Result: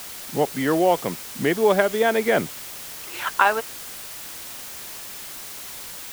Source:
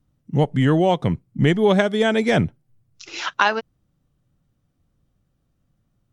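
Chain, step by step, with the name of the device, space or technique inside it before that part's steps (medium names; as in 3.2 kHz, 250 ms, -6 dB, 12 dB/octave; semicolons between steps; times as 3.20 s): wax cylinder (band-pass 350–2400 Hz; wow and flutter; white noise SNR 12 dB); trim +1 dB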